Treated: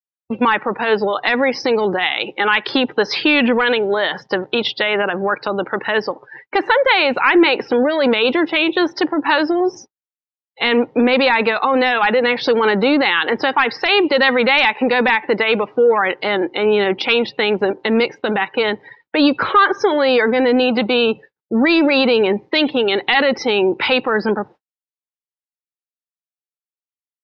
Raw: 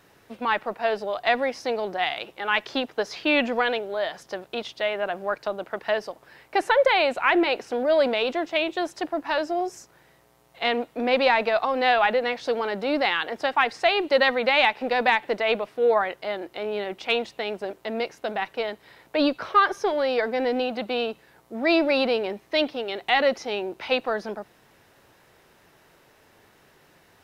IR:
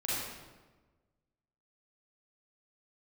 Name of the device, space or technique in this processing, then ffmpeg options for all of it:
mastering chain: -af "highpass=55,equalizer=f=790:t=o:w=0.23:g=4,acompressor=threshold=0.0398:ratio=1.5,asoftclip=type=tanh:threshold=0.211,asoftclip=type=hard:threshold=0.141,alimiter=level_in=11.9:limit=0.891:release=50:level=0:latency=1,lowpass=f=5400:w=0.5412,lowpass=f=5400:w=1.3066,agate=range=0.00112:threshold=0.0398:ratio=16:detection=peak,afftdn=nr=27:nf=-25,equalizer=f=680:t=o:w=0.4:g=-15,volume=0.708"

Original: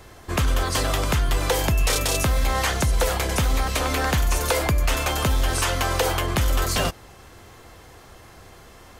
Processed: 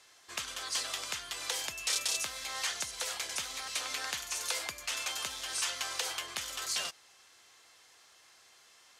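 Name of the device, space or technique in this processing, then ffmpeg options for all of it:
piezo pickup straight into a mixer: -af "lowpass=5900,aderivative"

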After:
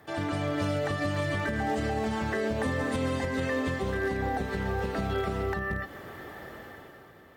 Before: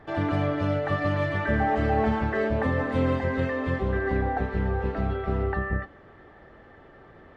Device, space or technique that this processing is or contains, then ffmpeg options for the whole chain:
FM broadcast chain: -filter_complex "[0:a]highpass=76,dynaudnorm=f=110:g=13:m=4.22,acrossover=split=500|3000[s0][s1][s2];[s0]acompressor=threshold=0.1:ratio=4[s3];[s1]acompressor=threshold=0.0447:ratio=4[s4];[s2]acompressor=threshold=0.00631:ratio=4[s5];[s3][s4][s5]amix=inputs=3:normalize=0,aemphasis=mode=production:type=50fm,alimiter=limit=0.15:level=0:latency=1:release=186,asoftclip=type=hard:threshold=0.126,lowpass=f=15000:w=0.5412,lowpass=f=15000:w=1.3066,aemphasis=mode=production:type=50fm,volume=0.668"

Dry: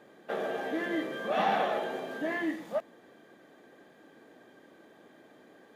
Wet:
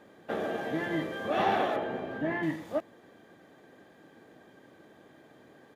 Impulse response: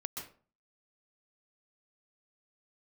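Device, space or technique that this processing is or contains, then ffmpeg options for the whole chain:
octave pedal: -filter_complex "[0:a]asettb=1/sr,asplit=3[s0][s1][s2];[s0]atrim=end=1.764[s3];[s1]atrim=start=1.76:end=2.43,asetpts=PTS-STARTPTS,afade=t=in:d=0.004:c=qsin,afade=t=out:st=0.666:d=0.004:c=qsin,bass=f=250:g=5,treble=f=4000:g=-14[s4];[s2]atrim=start=2.426[s5];[s3][s4]acrossfade=d=0.004:c1=hsin:c2=qsin[s6];[s6][s5]acrossfade=d=0.004:c1=qsin:c2=hsin,asplit=2[s7][s8];[s8]asetrate=22050,aresample=44100,atempo=2,volume=0.398[s9];[s7][s9]amix=inputs=2:normalize=0"

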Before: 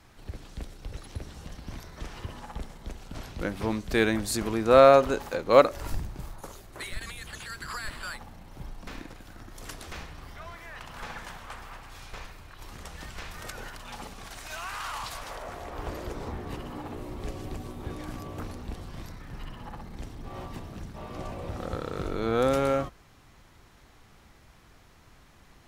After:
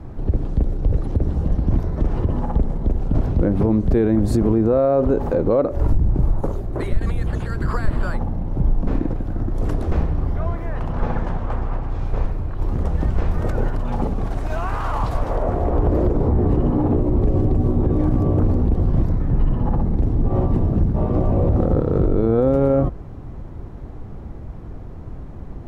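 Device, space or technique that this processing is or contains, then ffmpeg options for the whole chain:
mastering chain: -filter_complex "[0:a]asettb=1/sr,asplit=3[s0][s1][s2];[s0]atrim=end=10.924[s3];[s1]atrim=start=10.92:end=12.06,asetpts=PTS-STARTPTS,afade=t=in:d=0.004:c=qsin,afade=t=out:st=1.136:d=0.004:c=qsin,lowpass=7000[s4];[s2]atrim=start=12.056[s5];[s3][s4]acrossfade=d=0.004:c1=hsin:c2=qsin[s6];[s6][s5]acrossfade=d=0.004:c1=qsin:c2=hsin,tiltshelf=f=970:g=7,equalizer=f=200:t=o:w=0.77:g=-2,acompressor=threshold=0.0501:ratio=2.5,tiltshelf=f=1300:g=9.5,alimiter=level_in=6.68:limit=0.891:release=50:level=0:latency=1,volume=0.398"

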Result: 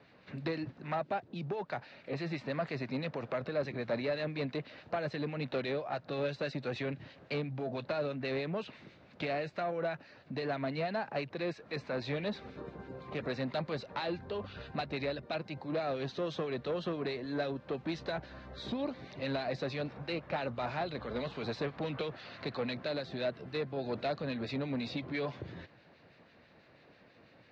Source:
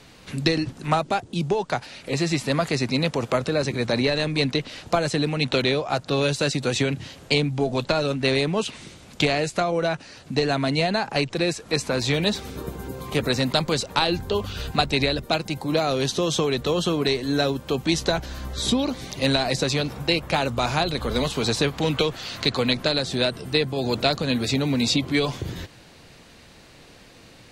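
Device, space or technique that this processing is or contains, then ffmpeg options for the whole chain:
guitar amplifier with harmonic tremolo: -filter_complex "[0:a]acrossover=split=1600[s0][s1];[s0]aeval=exprs='val(0)*(1-0.5/2+0.5/2*cos(2*PI*6.1*n/s))':c=same[s2];[s1]aeval=exprs='val(0)*(1-0.5/2-0.5/2*cos(2*PI*6.1*n/s))':c=same[s3];[s2][s3]amix=inputs=2:normalize=0,asoftclip=type=tanh:threshold=0.106,highpass=100,equalizer=f=600:t=q:w=4:g=5,equalizer=f=1700:t=q:w=4:g=3,equalizer=f=3200:t=q:w=4:g=-7,lowpass=f=3800:w=0.5412,lowpass=f=3800:w=1.3066,volume=0.355"

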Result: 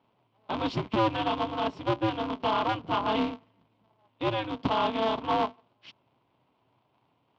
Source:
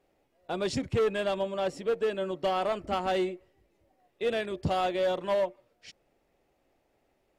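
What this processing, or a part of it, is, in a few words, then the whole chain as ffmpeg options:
ring modulator pedal into a guitar cabinet: -af "aeval=exprs='val(0)*sgn(sin(2*PI*110*n/s))':c=same,highpass=100,equalizer=f=120:t=q:w=4:g=9,equalizer=f=270:t=q:w=4:g=4,equalizer=f=480:t=q:w=4:g=-5,equalizer=f=1000:t=q:w=4:g=9,equalizer=f=1800:t=q:w=4:g=-7,equalizer=f=3100:t=q:w=4:g=5,lowpass=f=4200:w=0.5412,lowpass=f=4200:w=1.3066"

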